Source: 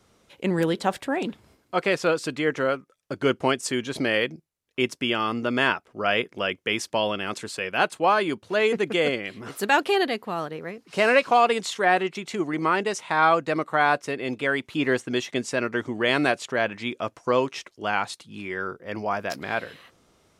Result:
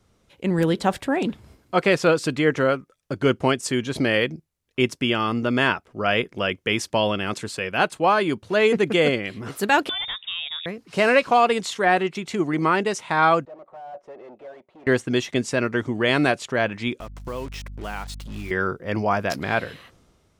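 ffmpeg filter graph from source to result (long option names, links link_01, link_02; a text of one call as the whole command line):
ffmpeg -i in.wav -filter_complex "[0:a]asettb=1/sr,asplit=3[link_01][link_02][link_03];[link_01]atrim=end=9.894[link_04];[link_02]atrim=start=9.89:end=10.66,asetpts=PTS-STARTPTS,afade=type=in:duration=0.004:curve=qsin,afade=type=out:start_time=0.766:duration=0.004:curve=qsin,acompressor=threshold=-27dB:ratio=5:attack=3.2:release=140:knee=1:detection=peak,lowpass=frequency=3300:width_type=q:width=0.5098,lowpass=frequency=3300:width_type=q:width=0.6013,lowpass=frequency=3300:width_type=q:width=0.9,lowpass=frequency=3300:width_type=q:width=2.563,afreqshift=-3900[link_05];[link_03]atrim=start=10.656[link_06];[link_04][link_05]acrossfade=duration=0.004:curve1=hsin:curve2=qsin[link_07];[link_07][link_06]acrossfade=duration=0.004:curve1=qsin:curve2=hsin,asettb=1/sr,asplit=3[link_08][link_09][link_10];[link_08]atrim=end=13.454[link_11];[link_09]atrim=start=13.45:end=14.87,asetpts=PTS-STARTPTS,afade=type=in:duration=0.004:curve=qsin,afade=type=out:start_time=1.416:duration=0.004:curve=qsin,aecho=1:1:5.4:0.32,atrim=end_sample=62622,aeval=exprs='(tanh(56.2*val(0)+0.3)-tanh(0.3))/56.2':channel_layout=same,bandpass=frequency=630:width_type=q:width=3.6[link_12];[link_10]atrim=start=14.866[link_13];[link_11][link_12]acrossfade=duration=0.004:curve1=hsin:curve2=qsin[link_14];[link_14][link_13]acrossfade=duration=0.004:curve1=qsin:curve2=hsin,asettb=1/sr,asplit=3[link_15][link_16][link_17];[link_15]atrim=end=17.004[link_18];[link_16]atrim=start=17:end=18.51,asetpts=PTS-STARTPTS,afade=type=in:duration=0.004:curve=qsin,afade=type=out:start_time=1.506:duration=0.004:curve=qsin,acompressor=threshold=-47dB:ratio=2:attack=3.2:release=140:knee=1:detection=peak,acrusher=bits=7:mix=0:aa=0.5,aeval=exprs='val(0)+0.00282*(sin(2*PI*50*n/s)+sin(2*PI*2*50*n/s)/2+sin(2*PI*3*50*n/s)/3+sin(2*PI*4*50*n/s)/4+sin(2*PI*5*50*n/s)/5)':channel_layout=same[link_19];[link_17]atrim=start=18.506[link_20];[link_18][link_19]acrossfade=duration=0.004:curve1=hsin:curve2=qsin[link_21];[link_21][link_20]acrossfade=duration=0.004:curve1=qsin:curve2=hsin,lowshelf=frequency=140:gain=12,dynaudnorm=framelen=120:gausssize=9:maxgain=11.5dB,volume=-5dB" out.wav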